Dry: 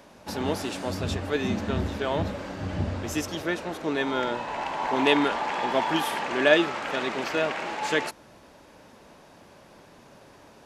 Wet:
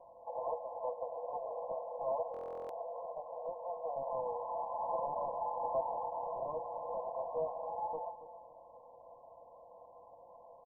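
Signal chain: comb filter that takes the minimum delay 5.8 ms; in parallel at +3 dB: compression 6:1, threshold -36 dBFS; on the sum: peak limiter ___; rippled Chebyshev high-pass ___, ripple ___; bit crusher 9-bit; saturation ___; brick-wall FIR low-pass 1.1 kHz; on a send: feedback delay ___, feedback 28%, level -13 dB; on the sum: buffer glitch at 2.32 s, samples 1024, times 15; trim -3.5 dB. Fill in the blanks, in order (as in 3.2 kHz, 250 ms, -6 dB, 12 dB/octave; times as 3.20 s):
-11.5 dBFS, 470 Hz, 6 dB, -23.5 dBFS, 280 ms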